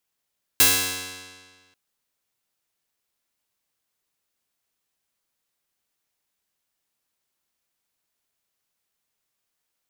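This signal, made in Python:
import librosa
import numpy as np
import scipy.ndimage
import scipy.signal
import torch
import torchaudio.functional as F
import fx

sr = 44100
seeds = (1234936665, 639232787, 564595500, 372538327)

y = fx.pluck(sr, length_s=1.14, note=42, decay_s=1.64, pick=0.15, brightness='bright')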